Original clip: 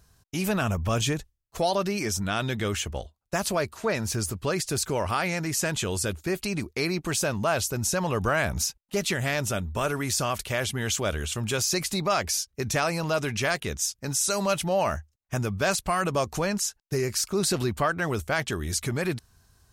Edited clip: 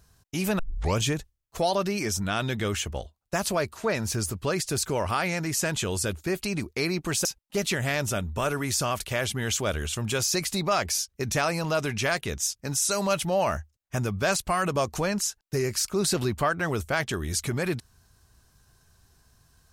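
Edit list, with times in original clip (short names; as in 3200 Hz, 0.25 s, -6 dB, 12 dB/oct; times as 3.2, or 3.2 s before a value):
0.59 tape start 0.39 s
7.25–8.64 cut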